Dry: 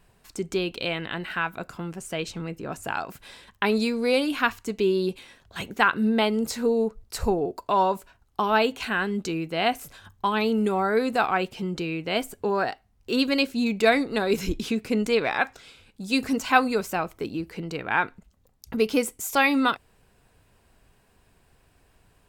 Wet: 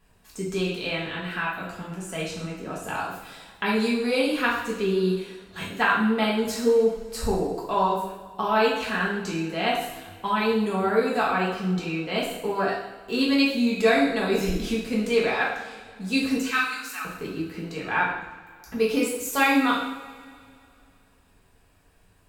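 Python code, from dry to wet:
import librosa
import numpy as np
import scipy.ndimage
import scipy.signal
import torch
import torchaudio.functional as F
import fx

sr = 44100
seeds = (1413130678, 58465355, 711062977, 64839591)

y = fx.highpass(x, sr, hz=1300.0, slope=24, at=(16.37, 17.05))
y = fx.rev_double_slope(y, sr, seeds[0], early_s=0.74, late_s=2.6, knee_db=-18, drr_db=-5.5)
y = y * librosa.db_to_amplitude(-6.0)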